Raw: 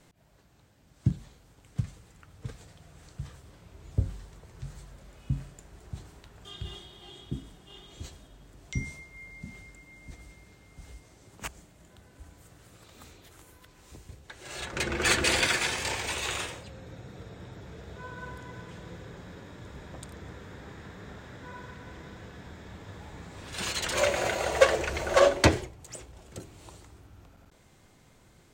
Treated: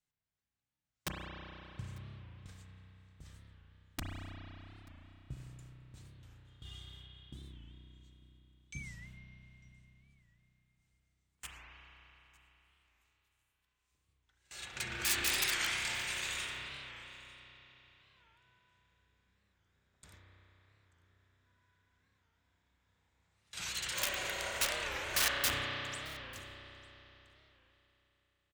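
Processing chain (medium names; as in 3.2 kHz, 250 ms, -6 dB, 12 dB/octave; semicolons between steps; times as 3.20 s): integer overflow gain 16.5 dB; amplifier tone stack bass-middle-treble 5-5-5; gate with hold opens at -41 dBFS; on a send: delay 897 ms -24 dB; on the sum: spring tank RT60 3.7 s, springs 32 ms, chirp 70 ms, DRR -2.5 dB; warped record 45 rpm, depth 160 cents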